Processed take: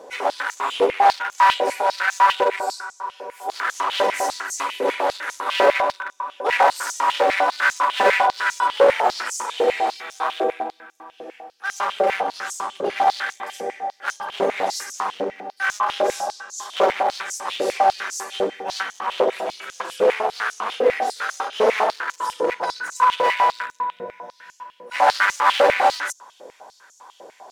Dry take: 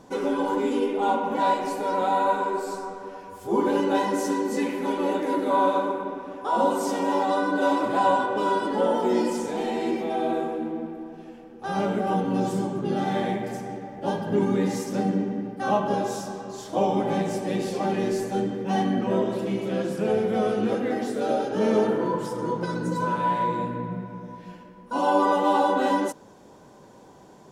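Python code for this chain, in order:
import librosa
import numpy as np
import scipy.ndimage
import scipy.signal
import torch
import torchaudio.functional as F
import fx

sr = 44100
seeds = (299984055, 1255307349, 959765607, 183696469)

y = np.minimum(x, 2.0 * 10.0 ** (-23.5 / 20.0) - x)
y = fx.filter_held_highpass(y, sr, hz=10.0, low_hz=510.0, high_hz=6400.0)
y = y * 10.0 ** (4.5 / 20.0)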